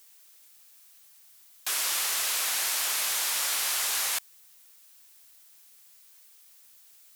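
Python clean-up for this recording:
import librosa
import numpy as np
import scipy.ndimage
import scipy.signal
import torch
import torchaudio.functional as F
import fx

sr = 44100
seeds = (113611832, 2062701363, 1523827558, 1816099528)

y = fx.fix_declip(x, sr, threshold_db=-21.0)
y = fx.noise_reduce(y, sr, print_start_s=0.1, print_end_s=0.6, reduce_db=22.0)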